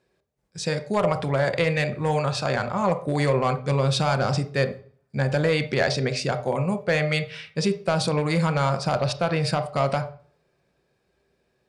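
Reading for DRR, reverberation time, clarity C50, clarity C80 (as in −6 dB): 8.0 dB, 0.45 s, 12.0 dB, 17.0 dB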